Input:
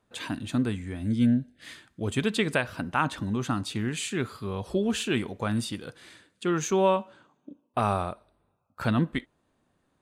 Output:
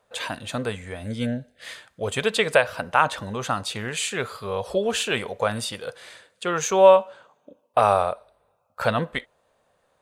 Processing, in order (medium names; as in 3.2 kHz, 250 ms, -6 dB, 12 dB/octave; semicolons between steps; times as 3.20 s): resonant low shelf 400 Hz -8 dB, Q 3; trim +6 dB